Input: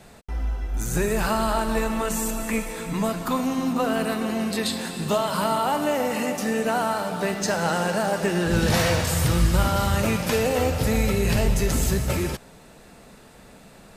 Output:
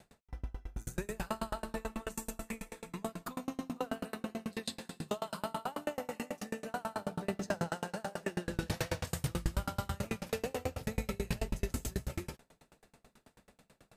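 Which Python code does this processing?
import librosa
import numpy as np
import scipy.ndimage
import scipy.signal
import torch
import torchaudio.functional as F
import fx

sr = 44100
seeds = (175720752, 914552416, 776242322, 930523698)

y = fx.low_shelf(x, sr, hz=440.0, db=9.0, at=(6.94, 7.69))
y = fx.tremolo_decay(y, sr, direction='decaying', hz=9.2, depth_db=34)
y = y * librosa.db_to_amplitude(-7.0)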